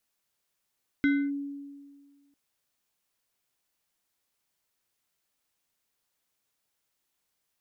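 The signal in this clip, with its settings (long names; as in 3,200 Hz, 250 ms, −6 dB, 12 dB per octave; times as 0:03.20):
two-operator FM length 1.30 s, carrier 282 Hz, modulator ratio 6.34, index 0.6, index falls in 0.27 s linear, decay 1.71 s, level −19 dB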